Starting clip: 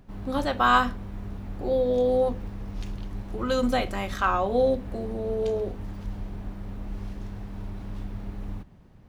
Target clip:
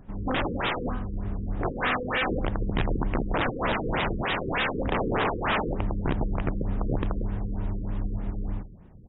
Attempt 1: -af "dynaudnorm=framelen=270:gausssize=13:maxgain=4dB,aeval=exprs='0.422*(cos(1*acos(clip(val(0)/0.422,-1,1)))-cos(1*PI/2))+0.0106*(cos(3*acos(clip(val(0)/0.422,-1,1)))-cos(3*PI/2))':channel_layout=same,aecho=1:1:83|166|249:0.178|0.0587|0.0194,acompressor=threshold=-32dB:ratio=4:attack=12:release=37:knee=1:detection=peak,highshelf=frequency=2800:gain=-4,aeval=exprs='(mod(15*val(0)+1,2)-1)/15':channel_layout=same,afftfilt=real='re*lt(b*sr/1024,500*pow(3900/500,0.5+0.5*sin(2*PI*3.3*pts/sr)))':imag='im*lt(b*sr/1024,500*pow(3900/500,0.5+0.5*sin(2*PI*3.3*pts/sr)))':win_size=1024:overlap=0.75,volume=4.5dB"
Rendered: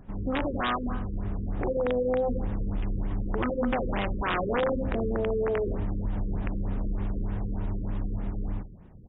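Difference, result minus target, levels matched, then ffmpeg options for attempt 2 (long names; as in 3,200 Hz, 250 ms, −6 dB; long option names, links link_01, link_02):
downward compressor: peak gain reduction +7 dB
-af "dynaudnorm=framelen=270:gausssize=13:maxgain=4dB,aeval=exprs='0.422*(cos(1*acos(clip(val(0)/0.422,-1,1)))-cos(1*PI/2))+0.0106*(cos(3*acos(clip(val(0)/0.422,-1,1)))-cos(3*PI/2))':channel_layout=same,aecho=1:1:83|166|249:0.178|0.0587|0.0194,acompressor=threshold=-22.5dB:ratio=4:attack=12:release=37:knee=1:detection=peak,highshelf=frequency=2800:gain=-4,aeval=exprs='(mod(15*val(0)+1,2)-1)/15':channel_layout=same,afftfilt=real='re*lt(b*sr/1024,500*pow(3900/500,0.5+0.5*sin(2*PI*3.3*pts/sr)))':imag='im*lt(b*sr/1024,500*pow(3900/500,0.5+0.5*sin(2*PI*3.3*pts/sr)))':win_size=1024:overlap=0.75,volume=4.5dB"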